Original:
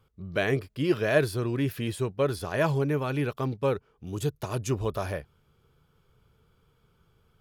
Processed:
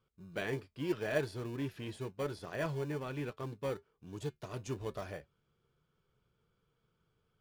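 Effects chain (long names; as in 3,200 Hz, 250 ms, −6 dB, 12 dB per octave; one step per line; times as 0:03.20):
low-pass filter 7,400 Hz 12 dB per octave
low-shelf EQ 130 Hz −8 dB
notch filter 830 Hz, Q 12
in parallel at −10.5 dB: decimation without filtering 34×
on the sum: flanger 0.33 Hz, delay 5.3 ms, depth 1.7 ms, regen −72%
level −6.5 dB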